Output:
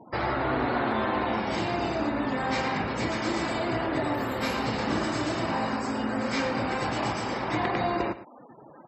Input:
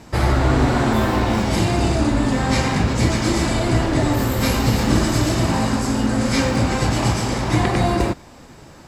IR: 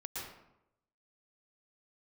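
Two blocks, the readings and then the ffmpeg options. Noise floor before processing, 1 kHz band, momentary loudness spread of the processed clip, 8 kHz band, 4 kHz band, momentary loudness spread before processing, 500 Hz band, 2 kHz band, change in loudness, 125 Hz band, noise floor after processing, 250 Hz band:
-43 dBFS, -5.0 dB, 3 LU, -16.5 dB, -9.5 dB, 2 LU, -6.5 dB, -5.5 dB, -9.5 dB, -17.0 dB, -50 dBFS, -10.0 dB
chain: -filter_complex "[0:a]highpass=f=550:p=1,asplit=2[s0][s1];[s1]acompressor=threshold=0.02:ratio=10,volume=1.12[s2];[s0][s2]amix=inputs=2:normalize=0,lowpass=f=2400:p=1,afftfilt=real='re*gte(hypot(re,im),0.0178)':imag='im*gte(hypot(re,im),0.0178)':win_size=1024:overlap=0.75,aecho=1:1:113:0.188,volume=0.562"

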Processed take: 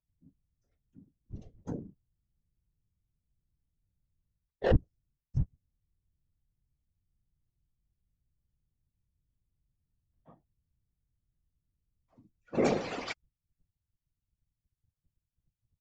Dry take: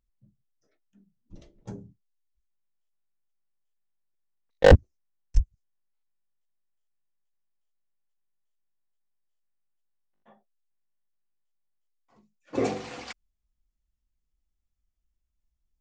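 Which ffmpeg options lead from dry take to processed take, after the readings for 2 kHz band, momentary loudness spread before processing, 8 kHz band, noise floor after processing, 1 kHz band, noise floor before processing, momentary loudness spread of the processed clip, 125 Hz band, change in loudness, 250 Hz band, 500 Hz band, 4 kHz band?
-9.5 dB, 21 LU, no reading, under -85 dBFS, -6.5 dB, -79 dBFS, 21 LU, -7.5 dB, -10.0 dB, -3.0 dB, -9.0 dB, -8.0 dB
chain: -af "aecho=1:1:4.3:0.73,areverse,acompressor=threshold=0.0794:ratio=16,areverse,afftdn=nr=13:nf=-48,afftfilt=real='hypot(re,im)*cos(2*PI*random(0))':imag='hypot(re,im)*sin(2*PI*random(1))':win_size=512:overlap=0.75,volume=2.11"

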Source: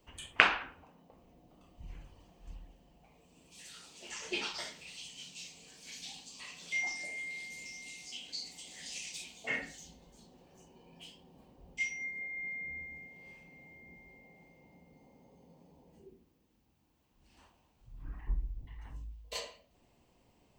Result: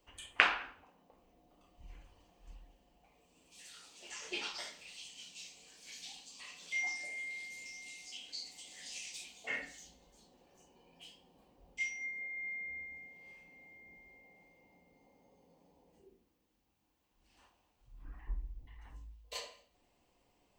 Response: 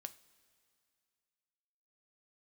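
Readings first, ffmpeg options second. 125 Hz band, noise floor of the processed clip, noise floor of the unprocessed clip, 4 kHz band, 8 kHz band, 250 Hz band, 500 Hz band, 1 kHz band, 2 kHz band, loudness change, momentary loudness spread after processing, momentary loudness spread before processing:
-6.5 dB, -76 dBFS, -71 dBFS, -2.5 dB, -2.5 dB, -6.5 dB, -4.5 dB, -3.0 dB, -2.5 dB, -2.0 dB, 20 LU, 19 LU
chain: -filter_complex "[0:a]equalizer=f=120:t=o:w=2.5:g=-8[s0];[1:a]atrim=start_sample=2205,afade=t=out:st=0.35:d=0.01,atrim=end_sample=15876,asetrate=52920,aresample=44100[s1];[s0][s1]afir=irnorm=-1:irlink=0,volume=1.58"

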